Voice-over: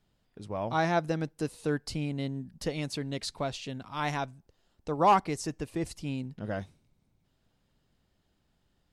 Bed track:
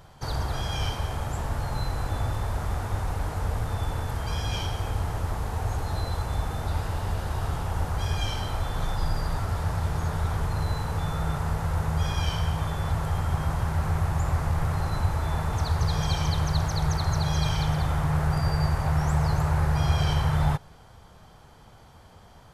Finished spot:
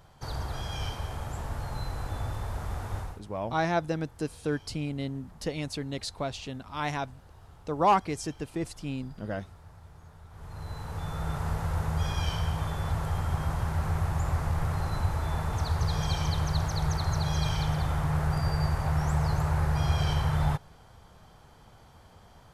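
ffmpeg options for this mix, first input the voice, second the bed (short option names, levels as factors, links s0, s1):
-filter_complex "[0:a]adelay=2800,volume=1[s0];[1:a]volume=5.62,afade=t=out:st=2.98:d=0.23:silence=0.125893,afade=t=in:st=10.3:d=1.18:silence=0.0944061[s1];[s0][s1]amix=inputs=2:normalize=0"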